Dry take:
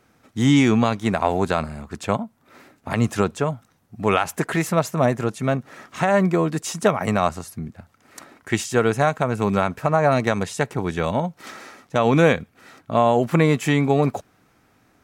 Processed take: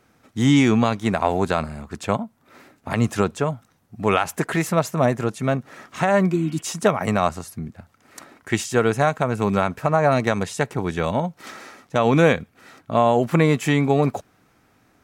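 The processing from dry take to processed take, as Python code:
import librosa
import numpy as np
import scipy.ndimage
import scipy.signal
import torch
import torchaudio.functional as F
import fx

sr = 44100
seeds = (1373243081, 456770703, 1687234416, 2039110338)

y = fx.spec_repair(x, sr, seeds[0], start_s=6.34, length_s=0.25, low_hz=370.0, high_hz=3400.0, source='both')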